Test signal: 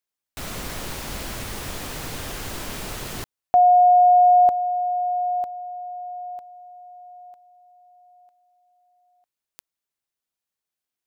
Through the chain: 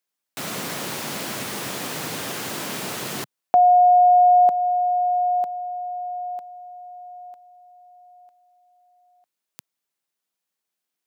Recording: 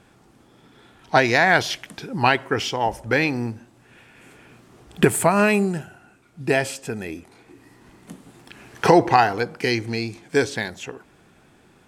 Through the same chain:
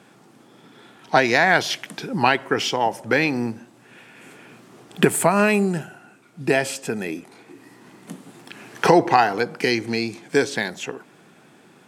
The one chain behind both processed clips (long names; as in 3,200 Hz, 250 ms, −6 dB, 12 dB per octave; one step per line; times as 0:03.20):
high-pass filter 140 Hz 24 dB per octave
in parallel at +0.5 dB: downward compressor, threshold −23 dBFS
on the sum: level −2.5 dB